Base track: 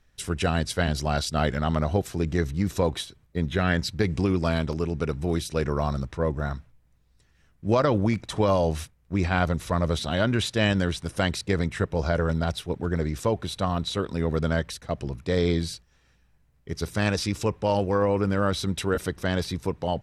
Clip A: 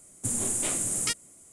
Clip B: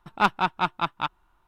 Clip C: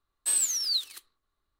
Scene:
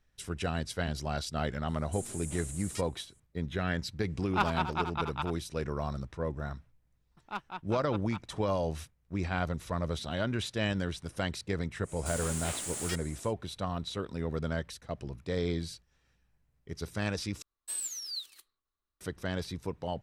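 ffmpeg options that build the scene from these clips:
ffmpeg -i bed.wav -i cue0.wav -i cue1.wav -i cue2.wav -filter_complex "[1:a]asplit=2[link_01][link_02];[2:a]asplit=2[link_03][link_04];[0:a]volume=-8.5dB[link_05];[link_03]asplit=2[link_06][link_07];[link_07]adelay=80,highpass=300,lowpass=3400,asoftclip=type=hard:threshold=-16.5dB,volume=-7dB[link_08];[link_06][link_08]amix=inputs=2:normalize=0[link_09];[link_02]asplit=2[link_10][link_11];[link_11]highpass=frequency=720:poles=1,volume=32dB,asoftclip=type=tanh:threshold=-9.5dB[link_12];[link_10][link_12]amix=inputs=2:normalize=0,lowpass=frequency=3600:poles=1,volume=-6dB[link_13];[link_05]asplit=2[link_14][link_15];[link_14]atrim=end=17.424[link_16];[3:a]atrim=end=1.59,asetpts=PTS-STARTPTS,volume=-10.5dB[link_17];[link_15]atrim=start=19.006[link_18];[link_01]atrim=end=1.52,asetpts=PTS-STARTPTS,volume=-15dB,afade=type=in:duration=0.004:curve=hsin,afade=type=out:start_time=1.516:duration=0.004:curve=hsin,adelay=1680[link_19];[link_09]atrim=end=1.47,asetpts=PTS-STARTPTS,volume=-8dB,afade=type=in:duration=0.004:curve=hsin,afade=type=out:start_time=1.466:duration=0.004:curve=hsin,adelay=4160[link_20];[link_04]atrim=end=1.47,asetpts=PTS-STARTPTS,volume=-17.5dB,afade=type=in:duration=0.004:curve=hsin,afade=type=out:start_time=1.466:duration=0.004:curve=hsin,adelay=7110[link_21];[link_13]atrim=end=1.52,asetpts=PTS-STARTPTS,volume=-15.5dB,afade=type=in:duration=0.1,afade=type=out:start_time=1.42:duration=0.1,adelay=11820[link_22];[link_16][link_17]acrossfade=duration=0.004:curve1=hsin:curve2=hsin[link_23];[link_23][link_18]acrossfade=duration=0.004:curve1=hsin:curve2=hsin[link_24];[link_24][link_19][link_20][link_21][link_22]amix=inputs=5:normalize=0" out.wav

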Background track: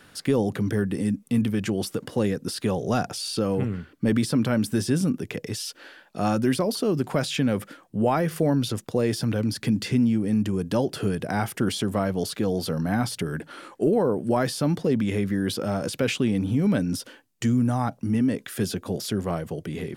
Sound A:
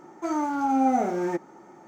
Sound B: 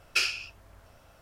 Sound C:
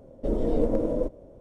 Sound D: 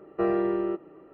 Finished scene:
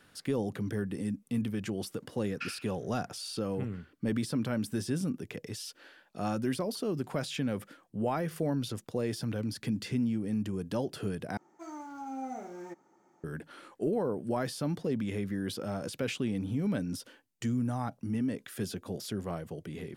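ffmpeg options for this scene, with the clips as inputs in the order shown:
ffmpeg -i bed.wav -i cue0.wav -i cue1.wav -filter_complex "[0:a]volume=-9dB[link_01];[2:a]bandpass=frequency=1500:width_type=q:width=2.5:csg=0[link_02];[1:a]highshelf=frequency=3700:gain=6.5[link_03];[link_01]asplit=2[link_04][link_05];[link_04]atrim=end=11.374[link_06];[link_03]atrim=end=1.87,asetpts=PTS-STARTPTS,volume=-17dB[link_07];[link_05]atrim=start=13.236[link_08];[link_02]atrim=end=1.21,asetpts=PTS-STARTPTS,volume=-4.5dB,afade=type=in:duration=0.004:curve=hsin,afade=type=out:start_time=1.206:duration=0.004:curve=hsin,adelay=2250[link_09];[link_06][link_07]acrossfade=duration=0.004:curve1=hsin:curve2=hsin[link_10];[link_10][link_08]acrossfade=duration=0.004:curve1=hsin:curve2=hsin[link_11];[link_11][link_09]amix=inputs=2:normalize=0" out.wav

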